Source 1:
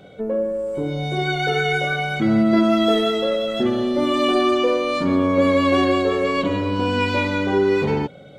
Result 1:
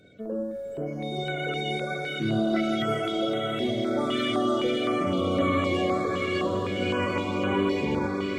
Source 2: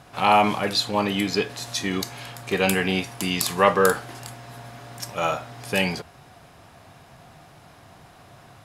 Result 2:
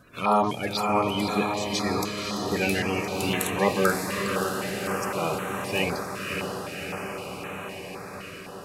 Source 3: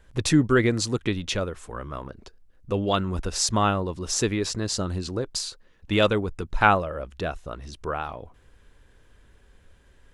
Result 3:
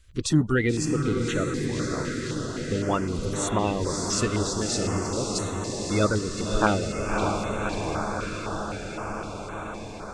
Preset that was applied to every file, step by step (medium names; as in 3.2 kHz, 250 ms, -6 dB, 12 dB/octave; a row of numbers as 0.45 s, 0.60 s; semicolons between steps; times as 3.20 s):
coarse spectral quantiser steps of 30 dB; echo that smears into a reverb 585 ms, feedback 76%, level -4.5 dB; step-sequenced notch 3.9 Hz 820–4900 Hz; normalise loudness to -27 LUFS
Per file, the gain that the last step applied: -7.5 dB, -2.5 dB, -1.0 dB